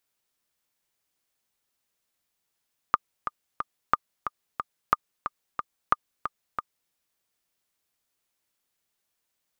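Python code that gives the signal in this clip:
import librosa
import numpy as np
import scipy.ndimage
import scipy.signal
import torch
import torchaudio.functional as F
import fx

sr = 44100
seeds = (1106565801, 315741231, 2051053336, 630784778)

y = fx.click_track(sr, bpm=181, beats=3, bars=4, hz=1210.0, accent_db=9.5, level_db=-5.5)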